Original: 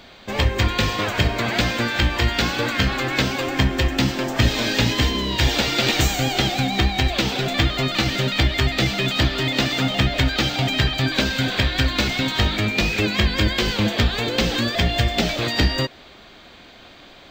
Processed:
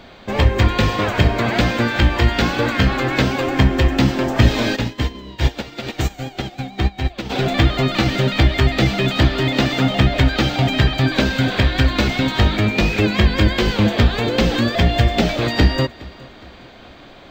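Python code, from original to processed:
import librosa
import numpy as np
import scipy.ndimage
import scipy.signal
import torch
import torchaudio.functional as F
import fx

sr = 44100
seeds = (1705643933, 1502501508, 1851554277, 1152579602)

y = fx.high_shelf(x, sr, hz=2100.0, db=-9.0)
y = fx.echo_feedback(y, sr, ms=414, feedback_pct=44, wet_db=-23.0)
y = fx.upward_expand(y, sr, threshold_db=-27.0, expansion=2.5, at=(4.75, 7.29), fade=0.02)
y = y * librosa.db_to_amplitude(5.5)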